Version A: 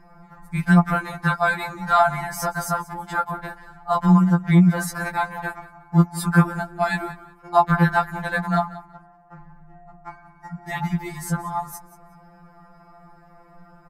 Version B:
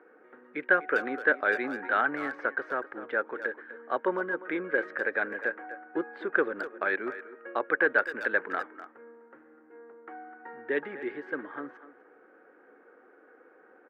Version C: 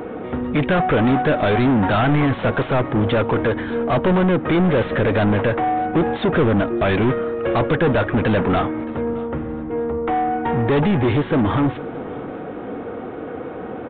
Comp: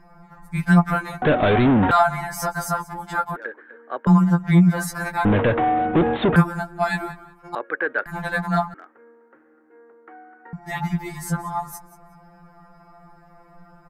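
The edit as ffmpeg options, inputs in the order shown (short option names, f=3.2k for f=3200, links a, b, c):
-filter_complex "[2:a]asplit=2[a][b];[1:a]asplit=3[c][d][e];[0:a]asplit=6[f][g][h][i][j][k];[f]atrim=end=1.222[l];[a]atrim=start=1.218:end=1.912[m];[g]atrim=start=1.908:end=3.362[n];[c]atrim=start=3.358:end=4.072[o];[h]atrim=start=4.068:end=5.252[p];[b]atrim=start=5.248:end=6.362[q];[i]atrim=start=6.358:end=7.552[r];[d]atrim=start=7.548:end=8.062[s];[j]atrim=start=8.058:end=8.742[t];[e]atrim=start=8.738:end=10.532[u];[k]atrim=start=10.528[v];[l][m]acrossfade=d=0.004:c1=hsin:c2=hsin[w];[w][n]acrossfade=d=0.004:c1=hsin:c2=hsin[x];[x][o]acrossfade=d=0.004:c1=hsin:c2=hsin[y];[y][p]acrossfade=d=0.004:c1=hsin:c2=hsin[z];[z][q]acrossfade=d=0.004:c1=hsin:c2=hsin[aa];[aa][r]acrossfade=d=0.004:c1=hsin:c2=hsin[ab];[ab][s]acrossfade=d=0.004:c1=hsin:c2=hsin[ac];[ac][t]acrossfade=d=0.004:c1=hsin:c2=hsin[ad];[ad][u]acrossfade=d=0.004:c1=hsin:c2=hsin[ae];[ae][v]acrossfade=d=0.004:c1=hsin:c2=hsin"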